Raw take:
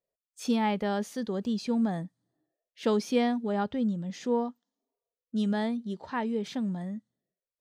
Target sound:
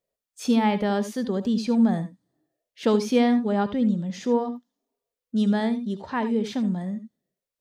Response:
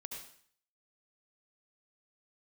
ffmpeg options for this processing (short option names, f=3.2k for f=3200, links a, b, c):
-filter_complex "[0:a]asplit=2[a][b];[1:a]atrim=start_sample=2205,atrim=end_sample=3969,lowshelf=f=340:g=5.5[c];[b][c]afir=irnorm=-1:irlink=0,volume=1.5dB[d];[a][d]amix=inputs=2:normalize=0"